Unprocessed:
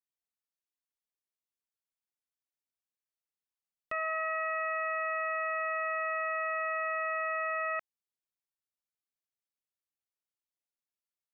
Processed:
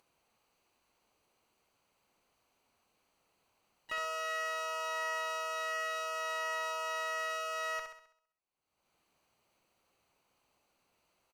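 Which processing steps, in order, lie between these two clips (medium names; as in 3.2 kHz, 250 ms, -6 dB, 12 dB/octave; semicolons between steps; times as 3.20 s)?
local Wiener filter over 25 samples; tilt shelf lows -7 dB, about 850 Hz; Chebyshev shaper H 7 -43 dB, 8 -39 dB, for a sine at -27 dBFS; upward compressor, threshold -47 dBFS; flutter echo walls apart 11.3 m, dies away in 0.6 s; harmony voices -5 st -11 dB, +7 st -9 dB; trim -4 dB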